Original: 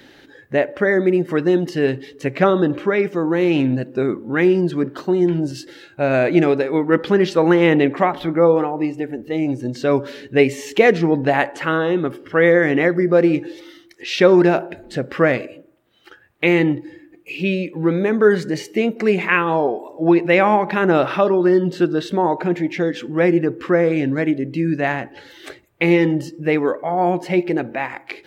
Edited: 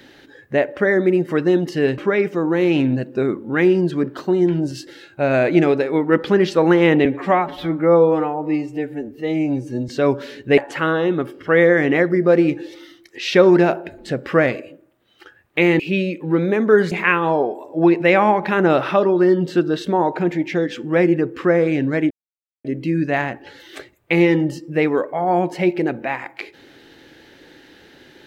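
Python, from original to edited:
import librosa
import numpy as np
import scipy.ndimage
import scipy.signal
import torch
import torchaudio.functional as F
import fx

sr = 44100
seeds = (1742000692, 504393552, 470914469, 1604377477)

y = fx.edit(x, sr, fx.cut(start_s=1.98, length_s=0.8),
    fx.stretch_span(start_s=7.85, length_s=1.89, factor=1.5),
    fx.cut(start_s=10.43, length_s=1.0),
    fx.cut(start_s=16.65, length_s=0.67),
    fx.cut(start_s=18.44, length_s=0.72),
    fx.insert_silence(at_s=24.35, length_s=0.54), tone=tone)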